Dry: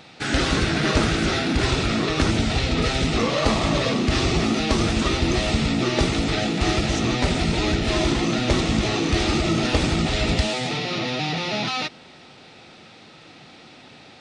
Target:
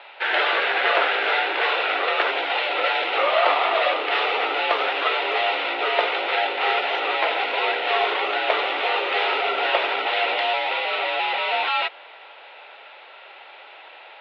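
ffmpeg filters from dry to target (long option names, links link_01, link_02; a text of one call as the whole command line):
ffmpeg -i in.wav -filter_complex "[0:a]highpass=frequency=480:width_type=q:width=0.5412,highpass=frequency=480:width_type=q:width=1.307,lowpass=frequency=3200:width_type=q:width=0.5176,lowpass=frequency=3200:width_type=q:width=0.7071,lowpass=frequency=3200:width_type=q:width=1.932,afreqshift=71,asettb=1/sr,asplit=3[link_01][link_02][link_03];[link_01]atrim=end=7.824[link_04];[link_02]atrim=start=7.82:end=8.29,asetpts=PTS-STARTPTS,afade=type=in:duration=0.004:curve=qsin,afade=type=out:start_time=0.466:duration=0.004:curve=qsin,aeval=exprs='0.2*(cos(1*acos(clip(val(0)/0.2,-1,1)))-cos(1*PI/2))+0.00355*(cos(2*acos(clip(val(0)/0.2,-1,1)))-cos(2*PI/2))':channel_layout=same[link_05];[link_03]atrim=start=8.286[link_06];[link_04][link_05]acrossfade=duration=0.004:curve1=hsin:curve2=qsin[link_07];[link_07][link_06]acrossfade=duration=0.004:curve1=qsin:curve2=hsin,volume=5.5dB" out.wav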